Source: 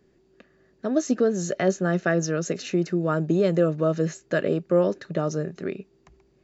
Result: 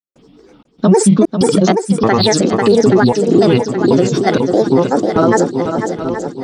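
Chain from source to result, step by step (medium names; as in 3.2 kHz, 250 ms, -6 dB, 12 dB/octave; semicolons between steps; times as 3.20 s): graphic EQ 125/250/500/1000/2000/4000 Hz -10/+12/-4/+10/-9/+11 dB; granulator, pitch spread up and down by 7 st; trance gate ".xxx.xxx.xx." 96 bpm -60 dB; shuffle delay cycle 824 ms, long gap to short 1.5:1, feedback 44%, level -10 dB; loudness maximiser +16 dB; trim -1 dB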